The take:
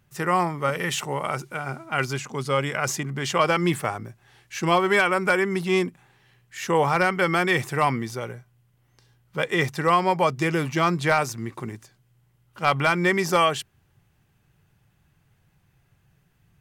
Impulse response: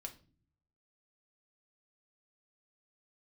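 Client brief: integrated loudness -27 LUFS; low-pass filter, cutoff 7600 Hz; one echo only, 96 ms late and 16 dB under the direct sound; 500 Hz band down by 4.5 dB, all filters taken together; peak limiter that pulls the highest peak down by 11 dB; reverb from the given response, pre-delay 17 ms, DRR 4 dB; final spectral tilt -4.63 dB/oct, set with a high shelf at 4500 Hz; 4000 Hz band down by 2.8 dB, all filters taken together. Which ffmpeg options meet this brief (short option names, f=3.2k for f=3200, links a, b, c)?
-filter_complex "[0:a]lowpass=7.6k,equalizer=f=500:t=o:g=-6,equalizer=f=4k:t=o:g=-7.5,highshelf=f=4.5k:g=7.5,alimiter=limit=-21dB:level=0:latency=1,aecho=1:1:96:0.158,asplit=2[a][b];[1:a]atrim=start_sample=2205,adelay=17[c];[b][c]afir=irnorm=-1:irlink=0,volume=0dB[d];[a][d]amix=inputs=2:normalize=0,volume=2.5dB"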